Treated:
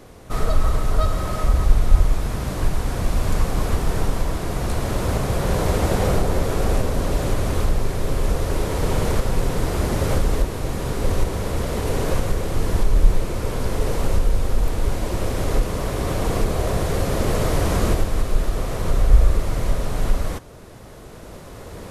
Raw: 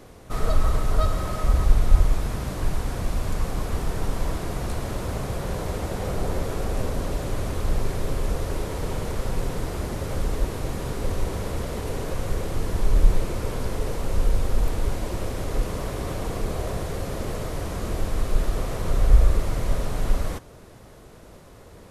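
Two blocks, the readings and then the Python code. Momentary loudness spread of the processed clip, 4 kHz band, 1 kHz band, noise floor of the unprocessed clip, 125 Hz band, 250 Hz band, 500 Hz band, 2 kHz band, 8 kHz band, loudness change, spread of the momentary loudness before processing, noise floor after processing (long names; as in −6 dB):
6 LU, +5.5 dB, +5.5 dB, −46 dBFS, +4.5 dB, +5.5 dB, +5.5 dB, +5.5 dB, +5.5 dB, +4.5 dB, 8 LU, −40 dBFS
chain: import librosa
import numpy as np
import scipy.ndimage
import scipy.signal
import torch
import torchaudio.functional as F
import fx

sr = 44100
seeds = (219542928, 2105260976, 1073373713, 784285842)

y = fx.recorder_agc(x, sr, target_db=-11.0, rise_db_per_s=5.1, max_gain_db=30)
y = y * 10.0 ** (2.0 / 20.0)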